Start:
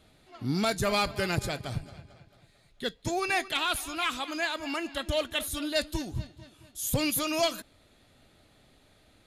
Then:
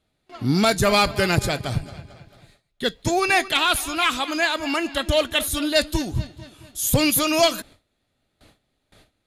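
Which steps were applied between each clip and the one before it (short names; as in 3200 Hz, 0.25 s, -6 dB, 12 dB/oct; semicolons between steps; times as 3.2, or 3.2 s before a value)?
gate with hold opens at -49 dBFS; gain +9 dB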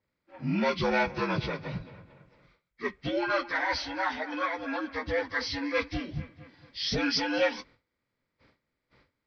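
inharmonic rescaling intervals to 78%; gain -7.5 dB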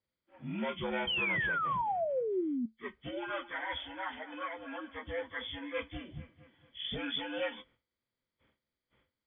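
nonlinear frequency compression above 3000 Hz 4:1; painted sound fall, 1.07–2.66, 230–3200 Hz -23 dBFS; resonator 74 Hz, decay 0.16 s, harmonics odd, mix 50%; gain -5.5 dB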